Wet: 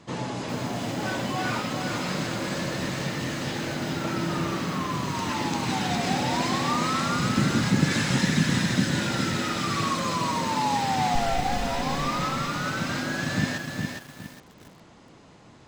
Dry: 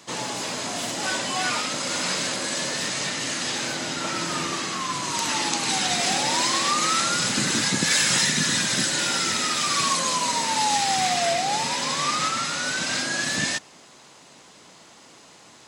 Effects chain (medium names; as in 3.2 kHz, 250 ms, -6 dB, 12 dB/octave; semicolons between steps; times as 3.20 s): 11.15–11.74 s: comb filter that takes the minimum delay 4 ms; RIAA curve playback; bit-crushed delay 411 ms, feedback 35%, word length 7-bit, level -4 dB; trim -3 dB